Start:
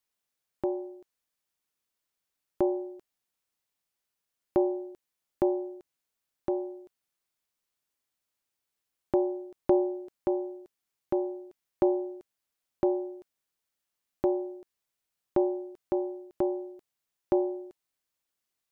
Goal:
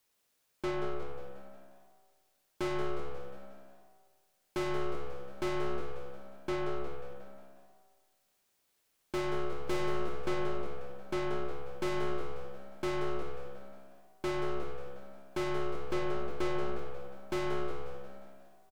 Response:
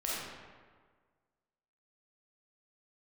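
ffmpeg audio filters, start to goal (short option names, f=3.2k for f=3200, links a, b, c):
-filter_complex "[0:a]equalizer=f=470:t=o:w=0.89:g=3,aeval=exprs='(tanh(112*val(0)+0.4)-tanh(0.4))/112':c=same,asplit=7[a][b][c][d][e][f][g];[b]adelay=179,afreqshift=66,volume=-10dB[h];[c]adelay=358,afreqshift=132,volume=-15.4dB[i];[d]adelay=537,afreqshift=198,volume=-20.7dB[j];[e]adelay=716,afreqshift=264,volume=-26.1dB[k];[f]adelay=895,afreqshift=330,volume=-31.4dB[l];[g]adelay=1074,afreqshift=396,volume=-36.8dB[m];[a][h][i][j][k][l][m]amix=inputs=7:normalize=0,asplit=2[n][o];[1:a]atrim=start_sample=2205[p];[o][p]afir=irnorm=-1:irlink=0,volume=-9.5dB[q];[n][q]amix=inputs=2:normalize=0,volume=7.5dB"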